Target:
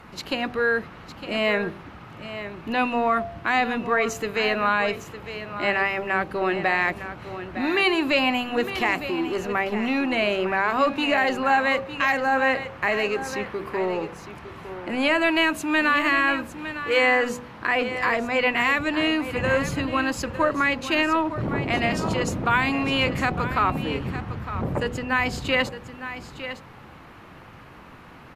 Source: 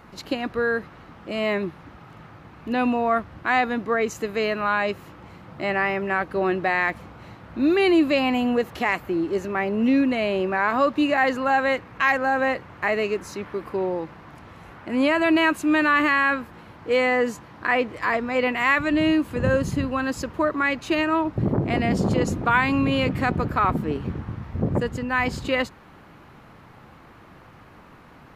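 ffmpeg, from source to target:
-filter_complex "[0:a]equalizer=f=2.7k:t=o:w=0.77:g=3,acrossover=split=610|3500[a][b][c];[a]asoftclip=type=tanh:threshold=-26.5dB[d];[b]alimiter=limit=-15dB:level=0:latency=1:release=366[e];[d][e][c]amix=inputs=3:normalize=0,bandreject=f=48.98:t=h:w=4,bandreject=f=97.96:t=h:w=4,bandreject=f=146.94:t=h:w=4,bandreject=f=195.92:t=h:w=4,bandreject=f=244.9:t=h:w=4,bandreject=f=293.88:t=h:w=4,bandreject=f=342.86:t=h:w=4,bandreject=f=391.84:t=h:w=4,bandreject=f=440.82:t=h:w=4,bandreject=f=489.8:t=h:w=4,bandreject=f=538.78:t=h:w=4,bandreject=f=587.76:t=h:w=4,bandreject=f=636.74:t=h:w=4,bandreject=f=685.72:t=h:w=4,bandreject=f=734.7:t=h:w=4,bandreject=f=783.68:t=h:w=4,bandreject=f=832.66:t=h:w=4,asplit=2[f][g];[g]aecho=0:1:908:0.266[h];[f][h]amix=inputs=2:normalize=0,aresample=32000,aresample=44100,volume=2.5dB"

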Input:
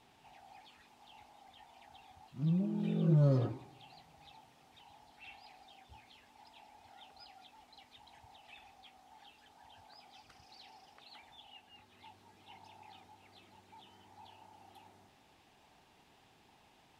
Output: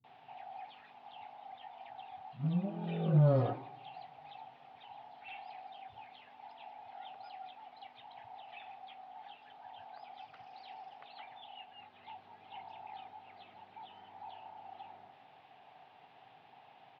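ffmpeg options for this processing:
-filter_complex "[0:a]highpass=f=120:w=0.5412,highpass=f=120:w=1.3066,equalizer=f=210:t=q:w=4:g=-5,equalizer=f=340:t=q:w=4:g=-9,equalizer=f=740:t=q:w=4:g=9,lowpass=f=3.4k:w=0.5412,lowpass=f=3.4k:w=1.3066,acrossover=split=200[a][b];[b]adelay=40[c];[a][c]amix=inputs=2:normalize=0,volume=4dB"

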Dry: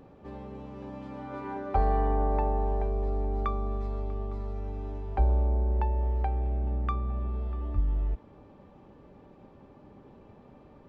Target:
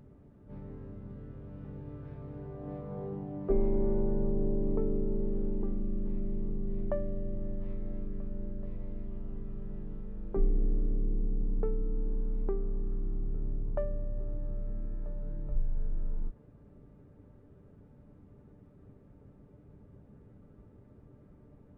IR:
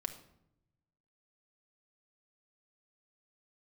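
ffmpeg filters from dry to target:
-af "asetrate=22050,aresample=44100,volume=-2.5dB"

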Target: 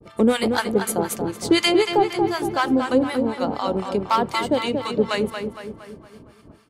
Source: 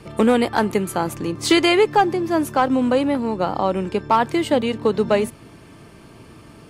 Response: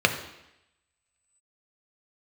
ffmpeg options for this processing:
-filter_complex "[0:a]acrossover=split=830[a][b];[a]aeval=exprs='val(0)*(1-1/2+1/2*cos(2*PI*4*n/s))':c=same[c];[b]aeval=exprs='val(0)*(1-1/2-1/2*cos(2*PI*4*n/s))':c=same[d];[c][d]amix=inputs=2:normalize=0,asplit=2[e][f];[f]adelay=231,lowpass=f=3.4k:p=1,volume=-6dB,asplit=2[g][h];[h]adelay=231,lowpass=f=3.4k:p=1,volume=0.53,asplit=2[i][j];[j]adelay=231,lowpass=f=3.4k:p=1,volume=0.53,asplit=2[k][l];[l]adelay=231,lowpass=f=3.4k:p=1,volume=0.53,asplit=2[m][n];[n]adelay=231,lowpass=f=3.4k:p=1,volume=0.53,asplit=2[o][p];[p]adelay=231,lowpass=f=3.4k:p=1,volume=0.53,asplit=2[q][r];[r]adelay=231,lowpass=f=3.4k:p=1,volume=0.53[s];[e][g][i][k][m][o][q][s]amix=inputs=8:normalize=0,agate=range=-33dB:threshold=-42dB:ratio=3:detection=peak,asplit=2[t][u];[1:a]atrim=start_sample=2205,afade=t=out:st=0.14:d=0.01,atrim=end_sample=6615[v];[u][v]afir=irnorm=-1:irlink=0,volume=-29dB[w];[t][w]amix=inputs=2:normalize=0,adynamicequalizer=threshold=0.0126:dfrequency=2400:dqfactor=0.7:tfrequency=2400:tqfactor=0.7:attack=5:release=100:ratio=0.375:range=3.5:mode=boostabove:tftype=highshelf"

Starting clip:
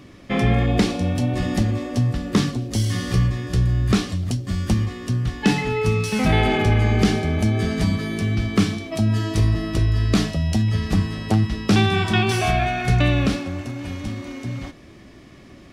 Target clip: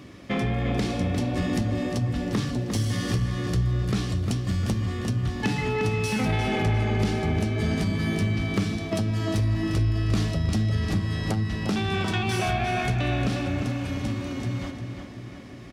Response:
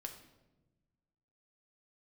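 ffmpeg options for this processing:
-filter_complex "[0:a]highpass=51,acompressor=threshold=-21dB:ratio=6,asoftclip=type=tanh:threshold=-18dB,asplit=2[a][b];[b]adelay=352,lowpass=f=4.7k:p=1,volume=-6.5dB,asplit=2[c][d];[d]adelay=352,lowpass=f=4.7k:p=1,volume=0.53,asplit=2[e][f];[f]adelay=352,lowpass=f=4.7k:p=1,volume=0.53,asplit=2[g][h];[h]adelay=352,lowpass=f=4.7k:p=1,volume=0.53,asplit=2[i][j];[j]adelay=352,lowpass=f=4.7k:p=1,volume=0.53,asplit=2[k][l];[l]adelay=352,lowpass=f=4.7k:p=1,volume=0.53,asplit=2[m][n];[n]adelay=352,lowpass=f=4.7k:p=1,volume=0.53[o];[c][e][g][i][k][m][o]amix=inputs=7:normalize=0[p];[a][p]amix=inputs=2:normalize=0"

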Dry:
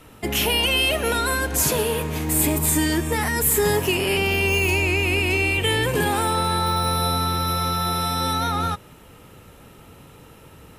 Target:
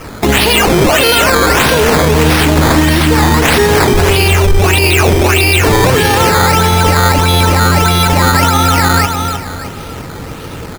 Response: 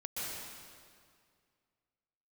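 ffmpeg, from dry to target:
-filter_complex "[0:a]aecho=1:1:308|616|924|1232|1540:0.631|0.233|0.0864|0.032|0.0118,acrusher=samples=11:mix=1:aa=0.000001:lfo=1:lforange=11:lforate=1.6,asplit=3[a][b][c];[a]afade=t=out:st=3.93:d=0.02[d];[b]asubboost=boost=5:cutoff=78,afade=t=in:st=3.93:d=0.02,afade=t=out:st=4.62:d=0.02[e];[c]afade=t=in:st=4.62:d=0.02[f];[d][e][f]amix=inputs=3:normalize=0,alimiter=level_in=20dB:limit=-1dB:release=50:level=0:latency=1,volume=-1dB"

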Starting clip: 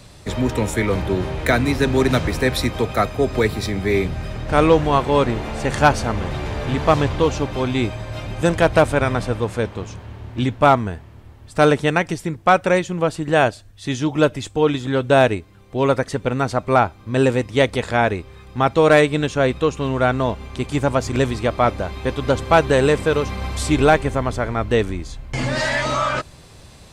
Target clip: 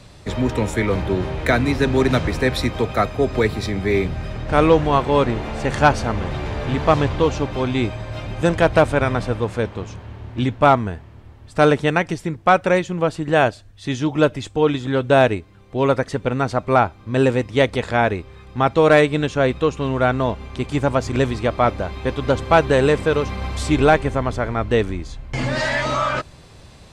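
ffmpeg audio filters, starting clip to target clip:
-af "highshelf=f=9k:g=-11"

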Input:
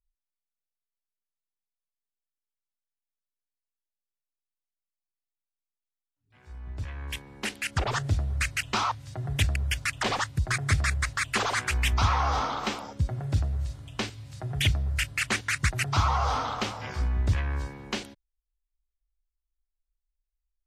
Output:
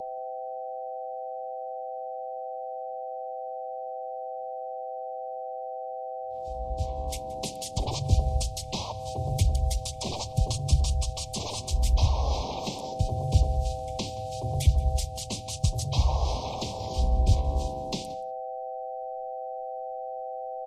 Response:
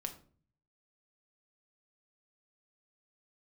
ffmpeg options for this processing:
-filter_complex "[0:a]aeval=exprs='val(0)+0.0178*sin(2*PI*770*n/s)':c=same,bass=f=250:g=0,treble=f=4k:g=11,acrossover=split=200[a][b];[b]acompressor=threshold=-30dB:ratio=8[c];[a][c]amix=inputs=2:normalize=0,asuperstop=centerf=1900:order=12:qfactor=0.76,asplit=3[d][e][f];[e]asetrate=29433,aresample=44100,atempo=1.49831,volume=-4dB[g];[f]asetrate=37084,aresample=44100,atempo=1.18921,volume=-4dB[h];[d][g][h]amix=inputs=3:normalize=0,highshelf=f=6.6k:g=-7.5,aecho=1:1:175:0.0944,asplit=2[i][j];[1:a]atrim=start_sample=2205[k];[j][k]afir=irnorm=-1:irlink=0,volume=-10.5dB[l];[i][l]amix=inputs=2:normalize=0,volume=-1.5dB"

